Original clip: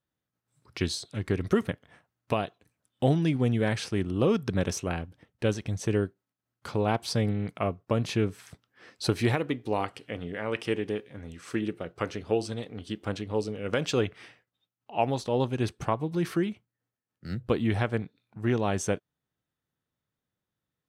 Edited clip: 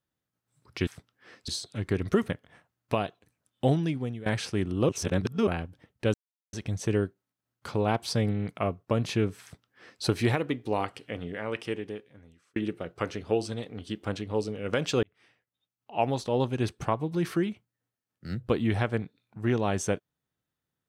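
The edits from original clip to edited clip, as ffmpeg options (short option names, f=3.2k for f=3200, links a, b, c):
-filter_complex "[0:a]asplit=9[a][b][c][d][e][f][g][h][i];[a]atrim=end=0.872[j];[b]atrim=start=8.418:end=9.032[k];[c]atrim=start=0.868:end=3.65,asetpts=PTS-STARTPTS,afade=t=out:st=2.192:d=0.59:silence=0.125893[l];[d]atrim=start=3.65:end=4.282,asetpts=PTS-STARTPTS,afade=t=in:d=0.004:c=hsin:silence=0.125893[m];[e]atrim=start=4.278:end=4.862,asetpts=PTS-STARTPTS,areverse[n];[f]atrim=start=4.858:end=5.53,asetpts=PTS-STARTPTS,afade=t=out:st=0.668:d=0.004:c=hsin,apad=pad_dur=0.39[o];[g]atrim=start=5.53:end=11.56,asetpts=PTS-STARTPTS,afade=t=in:d=0.004:c=hsin,afade=t=out:st=4.71:d=1.32[p];[h]atrim=start=11.56:end=14.03,asetpts=PTS-STARTPTS,afade=t=in:d=0.004:c=hsin,afade=t=out:st=2.466:d=0.004:c=hsin[q];[i]atrim=start=14.03,asetpts=PTS-STARTPTS,afade=t=in:d=1.03[r];[j][k]acrossfade=d=0.004:c1=hsin:c2=hsin[s];[l][m]concat=n=2:v=0:a=1[t];[s][t]acrossfade=d=0.004:c1=hsin:c2=hsin[u];[u][n]acrossfade=d=0.004:c1=hsin:c2=hsin[v];[o][p][q][r]concat=n=4:v=0:a=1[w];[v][w]acrossfade=d=0.004:c1=hsin:c2=hsin"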